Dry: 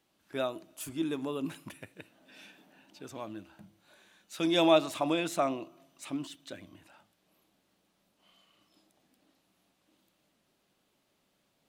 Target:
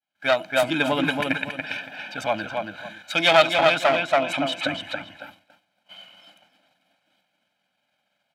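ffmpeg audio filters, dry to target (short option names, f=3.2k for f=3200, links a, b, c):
-filter_complex "[0:a]asplit=2[a][b];[b]adynamicsmooth=sensitivity=5:basefreq=3.2k,volume=3dB[c];[a][c]amix=inputs=2:normalize=0,bandreject=f=950:w=14,aecho=1:1:1.3:0.89,asplit=2[d][e];[e]adelay=389,lowpass=f=4.1k:p=1,volume=-4dB,asplit=2[f][g];[g]adelay=389,lowpass=f=4.1k:p=1,volume=0.28,asplit=2[h][i];[i]adelay=389,lowpass=f=4.1k:p=1,volume=0.28,asplit=2[j][k];[k]adelay=389,lowpass=f=4.1k:p=1,volume=0.28[l];[d][f][h][j][l]amix=inputs=5:normalize=0,aeval=exprs='clip(val(0),-1,0.0891)':c=same,highpass=f=320:p=1,equalizer=f=2.7k:t=o:w=2.4:g=10,atempo=1.4,agate=range=-33dB:threshold=-50dB:ratio=3:detection=peak,dynaudnorm=f=140:g=5:m=8.5dB,adynamicequalizer=threshold=0.00562:dfrequency=5400:dqfactor=0.7:tfrequency=5400:tqfactor=0.7:attack=5:release=100:ratio=0.375:range=2:mode=cutabove:tftype=highshelf,volume=-1dB"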